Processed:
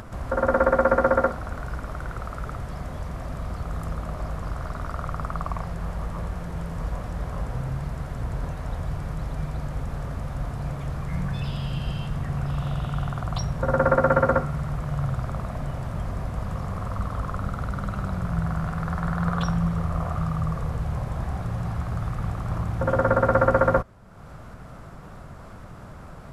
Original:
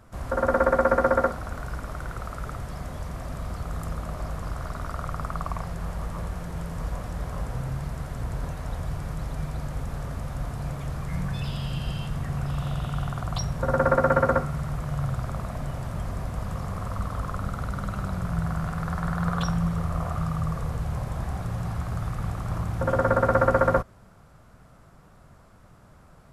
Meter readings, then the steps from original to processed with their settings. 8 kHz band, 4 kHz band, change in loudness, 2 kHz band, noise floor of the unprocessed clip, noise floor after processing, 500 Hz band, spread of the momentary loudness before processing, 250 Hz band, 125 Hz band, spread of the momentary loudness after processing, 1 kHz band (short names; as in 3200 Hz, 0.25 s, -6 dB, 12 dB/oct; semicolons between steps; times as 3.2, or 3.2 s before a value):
n/a, -1.0 dB, +1.5 dB, +1.0 dB, -53 dBFS, -42 dBFS, +1.5 dB, 13 LU, +1.5 dB, +1.5 dB, 14 LU, +1.0 dB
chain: high shelf 4800 Hz -7 dB; upward compressor, threshold -32 dBFS; gain +1.5 dB